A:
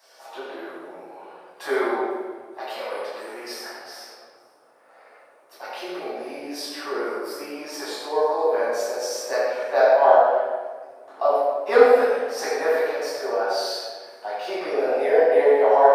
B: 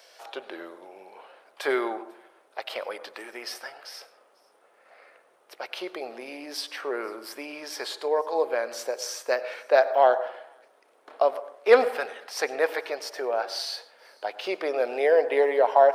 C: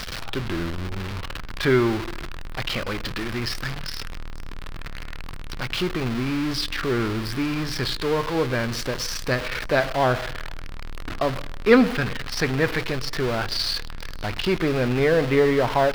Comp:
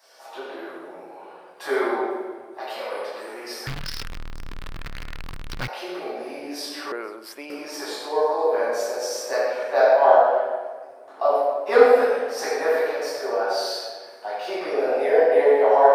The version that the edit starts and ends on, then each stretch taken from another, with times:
A
3.67–5.68 from C
6.92–7.5 from B

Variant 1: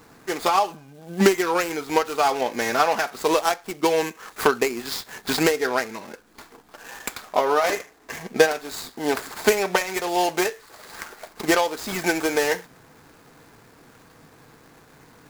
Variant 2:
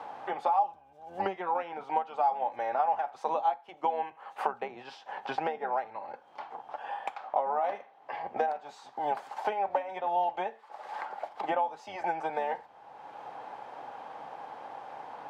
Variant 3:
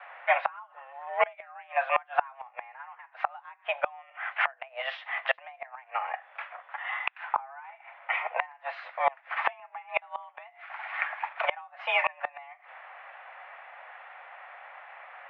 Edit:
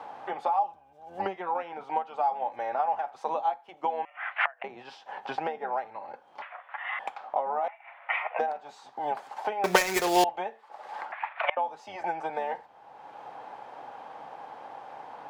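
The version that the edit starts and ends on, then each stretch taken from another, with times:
2
4.05–4.64 from 3
6.42–6.99 from 3
7.68–8.39 from 3
9.64–10.24 from 1
11.12–11.57 from 3

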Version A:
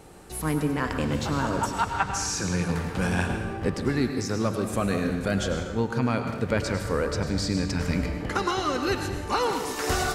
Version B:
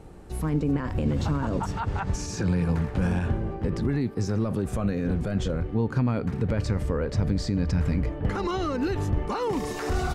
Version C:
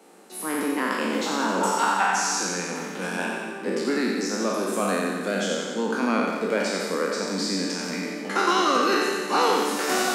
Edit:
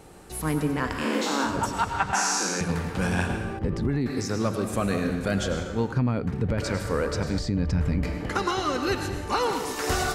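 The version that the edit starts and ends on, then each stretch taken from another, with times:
A
0.99–1.5 from C, crossfade 0.16 s
2.13–2.61 from C
3.59–4.06 from B
5.92–6.58 from B
7.39–8.03 from B

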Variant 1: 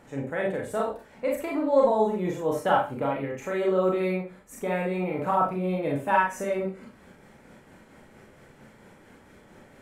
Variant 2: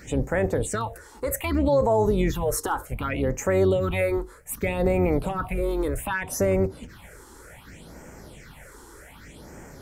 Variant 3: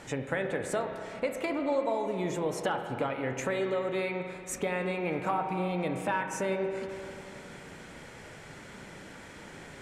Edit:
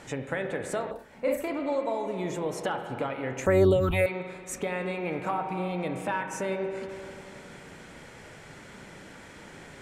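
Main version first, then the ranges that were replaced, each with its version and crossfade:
3
0.91–1.48 from 1
3.46–4.06 from 2

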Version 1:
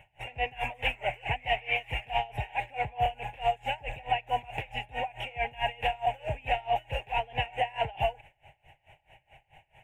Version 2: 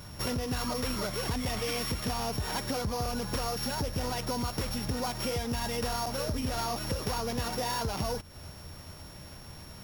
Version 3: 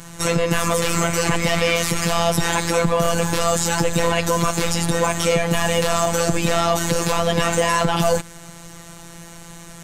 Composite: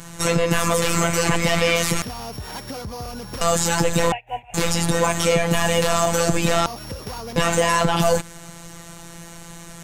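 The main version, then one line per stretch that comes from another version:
3
2.02–3.41 from 2
4.12–4.54 from 1
6.66–7.36 from 2

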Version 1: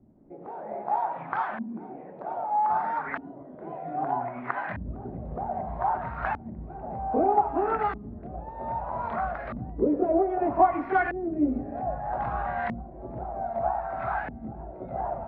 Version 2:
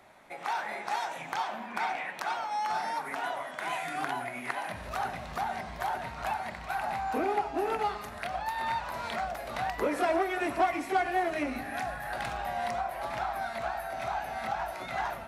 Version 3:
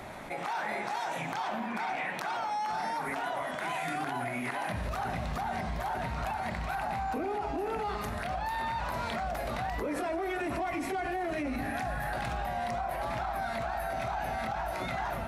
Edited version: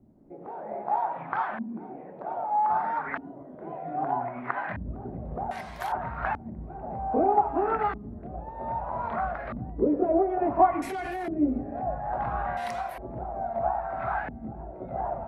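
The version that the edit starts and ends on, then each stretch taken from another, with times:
1
5.51–5.92 from 2
10.82–11.28 from 3
12.57–12.98 from 2

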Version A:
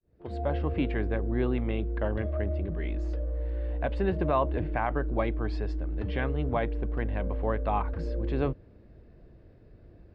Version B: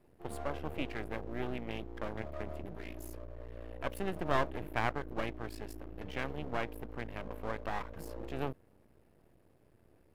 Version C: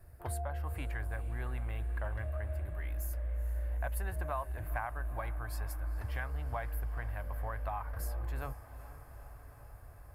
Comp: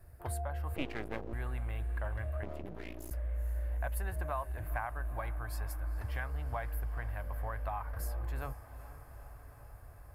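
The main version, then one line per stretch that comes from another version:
C
0.76–1.33 from B
2.43–3.11 from B
not used: A

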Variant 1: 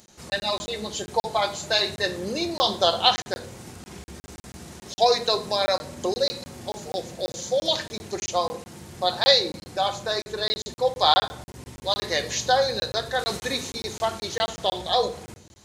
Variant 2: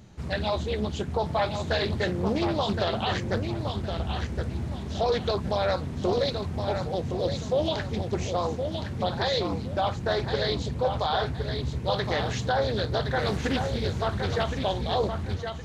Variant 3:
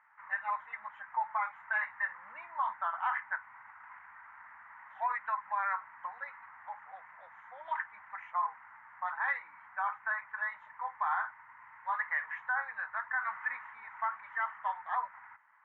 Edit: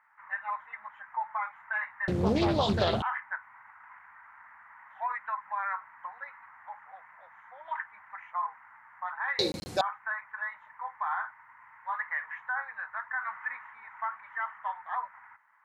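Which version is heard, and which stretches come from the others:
3
2.08–3.02 from 2
9.39–9.81 from 1

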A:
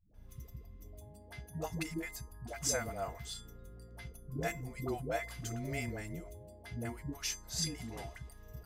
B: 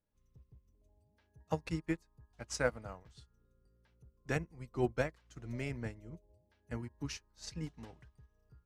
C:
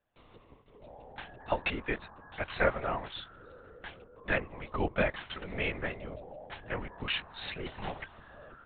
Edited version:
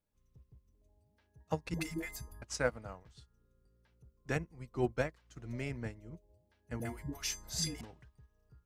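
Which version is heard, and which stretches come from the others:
B
1.74–2.42 from A
6.8–7.81 from A
not used: C

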